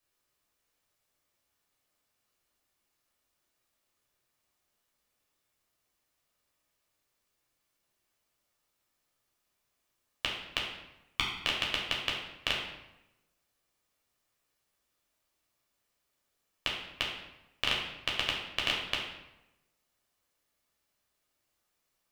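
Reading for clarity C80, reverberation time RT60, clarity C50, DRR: 6.0 dB, 0.95 s, 3.0 dB, -3.0 dB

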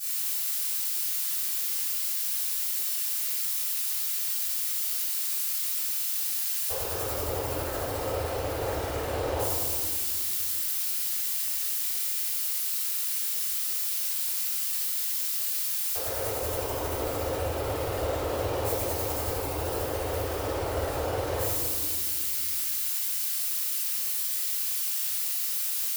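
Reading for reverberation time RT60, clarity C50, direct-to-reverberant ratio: 2.3 s, -3.5 dB, -18.0 dB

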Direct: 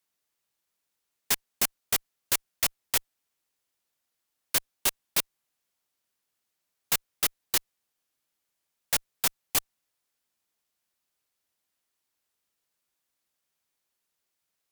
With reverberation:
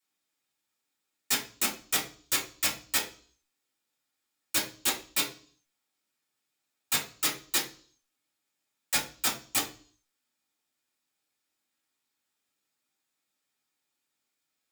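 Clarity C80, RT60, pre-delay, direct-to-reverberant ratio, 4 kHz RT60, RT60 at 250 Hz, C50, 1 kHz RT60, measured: 15.0 dB, 0.40 s, 3 ms, -6.0 dB, 0.50 s, 0.55 s, 9.5 dB, 0.40 s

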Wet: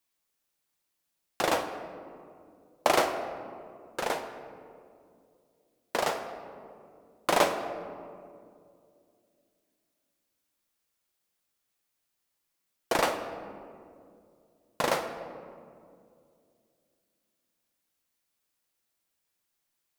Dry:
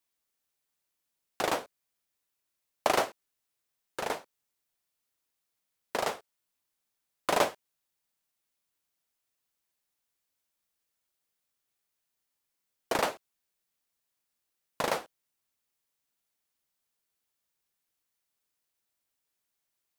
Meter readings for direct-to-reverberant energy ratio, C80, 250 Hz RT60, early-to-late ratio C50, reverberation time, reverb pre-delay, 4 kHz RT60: 6.0 dB, 9.5 dB, 3.1 s, 8.0 dB, 2.4 s, 4 ms, 1.1 s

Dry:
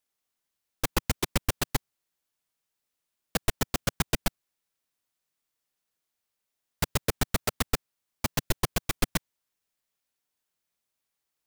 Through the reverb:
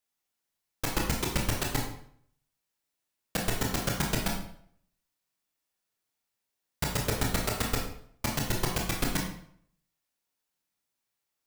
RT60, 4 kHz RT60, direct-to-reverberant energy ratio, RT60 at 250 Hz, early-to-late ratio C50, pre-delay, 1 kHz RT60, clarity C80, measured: 0.60 s, 0.50 s, -1.0 dB, 0.60 s, 5.0 dB, 20 ms, 0.60 s, 8.5 dB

